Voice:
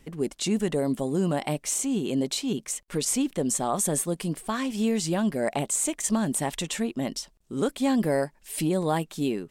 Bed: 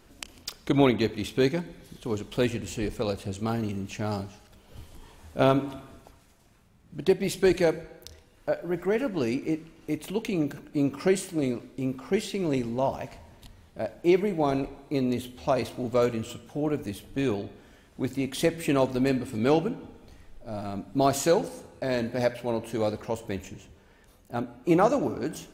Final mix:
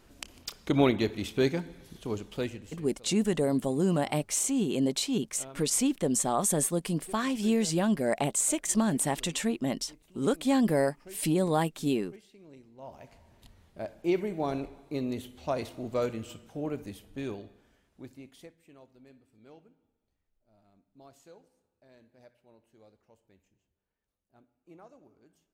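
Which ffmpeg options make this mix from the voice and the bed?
-filter_complex "[0:a]adelay=2650,volume=0.891[s0];[1:a]volume=7.08,afade=t=out:st=2.03:d=0.82:silence=0.0707946,afade=t=in:st=12.75:d=0.78:silence=0.105925,afade=t=out:st=16.6:d=1.96:silence=0.0530884[s1];[s0][s1]amix=inputs=2:normalize=0"

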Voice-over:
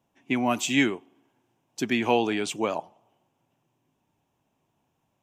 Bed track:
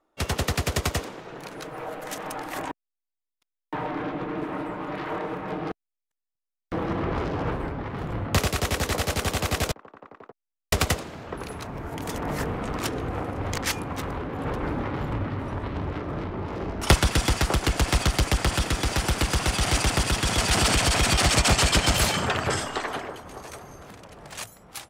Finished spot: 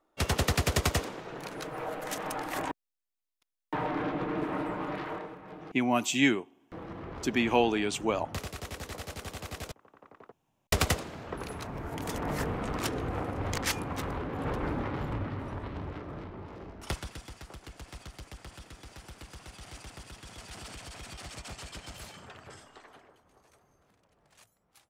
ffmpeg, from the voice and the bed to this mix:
-filter_complex "[0:a]adelay=5450,volume=0.794[s0];[1:a]volume=2.99,afade=t=out:st=4.82:d=0.53:silence=0.223872,afade=t=in:st=9.77:d=0.75:silence=0.281838,afade=t=out:st=14.59:d=2.66:silence=0.1[s1];[s0][s1]amix=inputs=2:normalize=0"

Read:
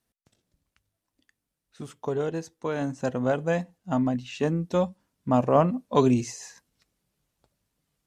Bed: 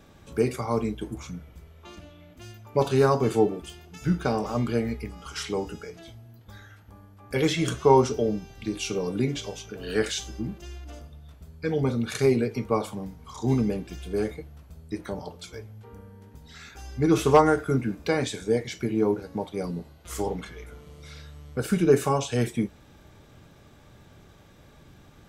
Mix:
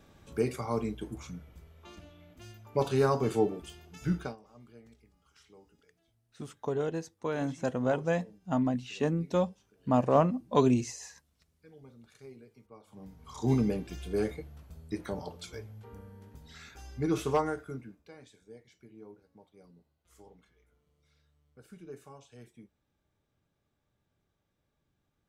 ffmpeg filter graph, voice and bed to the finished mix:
-filter_complex "[0:a]adelay=4600,volume=0.668[s0];[1:a]volume=10,afade=t=out:st=4.16:d=0.2:silence=0.0707946,afade=t=in:st=12.86:d=0.58:silence=0.0530884,afade=t=out:st=16.2:d=1.84:silence=0.0630957[s1];[s0][s1]amix=inputs=2:normalize=0"

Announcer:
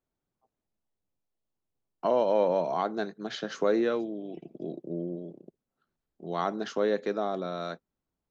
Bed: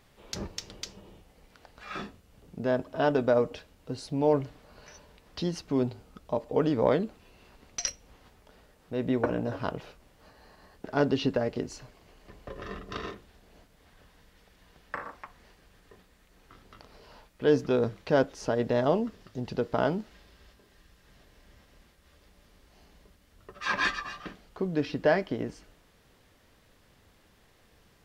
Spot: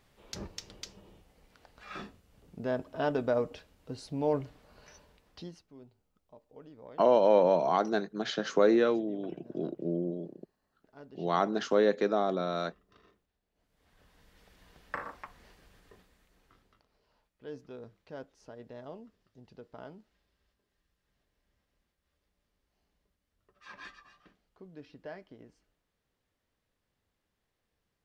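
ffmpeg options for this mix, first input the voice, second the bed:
-filter_complex "[0:a]adelay=4950,volume=1.26[s0];[1:a]volume=10,afade=t=out:st=4.96:d=0.72:silence=0.0891251,afade=t=in:st=13.55:d=0.94:silence=0.0562341,afade=t=out:st=15.65:d=1.19:silence=0.105925[s1];[s0][s1]amix=inputs=2:normalize=0"

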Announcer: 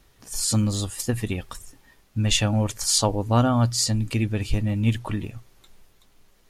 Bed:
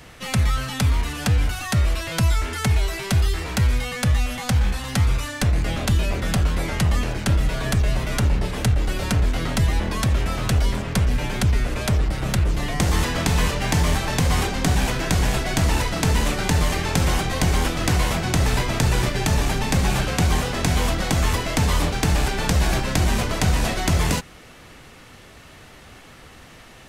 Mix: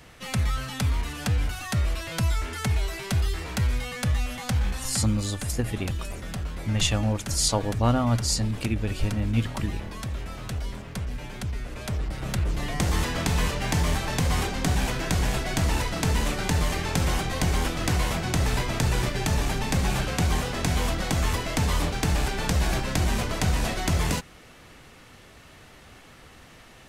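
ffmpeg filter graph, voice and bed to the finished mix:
-filter_complex "[0:a]adelay=4500,volume=0.708[s0];[1:a]volume=1.26,afade=t=out:st=4.8:d=0.24:silence=0.473151,afade=t=in:st=11.65:d=1.03:silence=0.421697[s1];[s0][s1]amix=inputs=2:normalize=0"

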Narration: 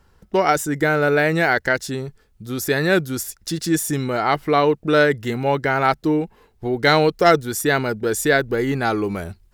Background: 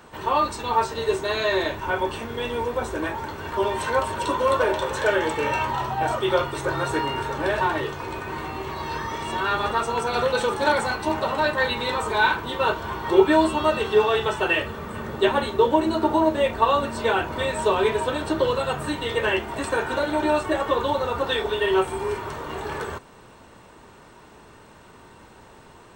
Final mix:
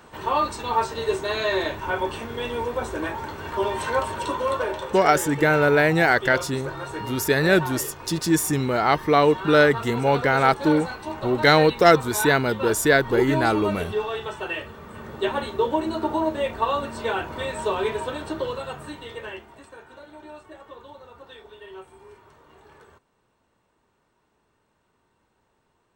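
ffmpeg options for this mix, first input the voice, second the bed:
-filter_complex "[0:a]adelay=4600,volume=0.944[s0];[1:a]volume=1.41,afade=t=out:st=4:d=0.98:silence=0.446684,afade=t=in:st=14.81:d=0.6:silence=0.630957,afade=t=out:st=17.94:d=1.75:silence=0.141254[s1];[s0][s1]amix=inputs=2:normalize=0"

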